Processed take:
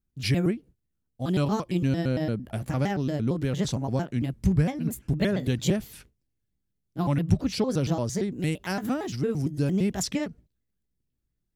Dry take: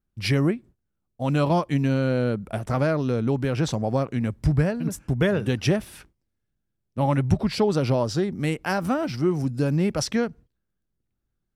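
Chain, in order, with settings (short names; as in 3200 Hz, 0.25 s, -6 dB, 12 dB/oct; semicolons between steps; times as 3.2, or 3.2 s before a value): trilling pitch shifter +4 st, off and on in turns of 0.114 s; bell 950 Hz -8 dB 2.6 oct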